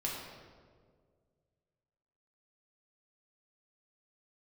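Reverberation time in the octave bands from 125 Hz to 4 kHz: 2.6, 2.1, 2.2, 1.5, 1.2, 1.0 seconds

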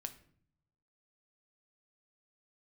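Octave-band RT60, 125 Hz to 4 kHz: 1.2, 0.95, 0.65, 0.50, 0.50, 0.40 seconds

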